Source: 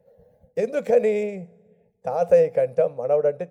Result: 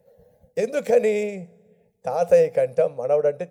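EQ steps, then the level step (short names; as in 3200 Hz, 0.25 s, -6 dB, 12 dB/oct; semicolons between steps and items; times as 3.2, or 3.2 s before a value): high shelf 2900 Hz +9 dB; 0.0 dB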